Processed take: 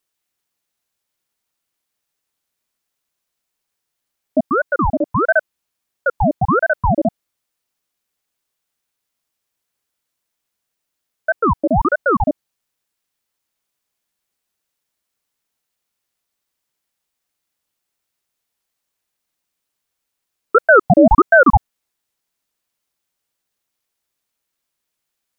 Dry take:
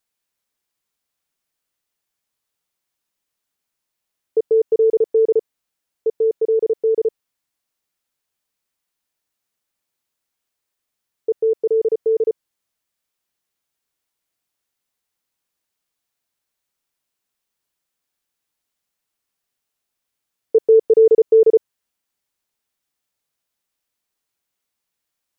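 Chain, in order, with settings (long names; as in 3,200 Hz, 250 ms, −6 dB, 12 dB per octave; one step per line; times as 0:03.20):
0:04.45–0:05.29: parametric band 190 Hz −6.5 dB 2.9 octaves
ring modulator whose carrier an LFO sweeps 620 Hz, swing 80%, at 1.5 Hz
level +5 dB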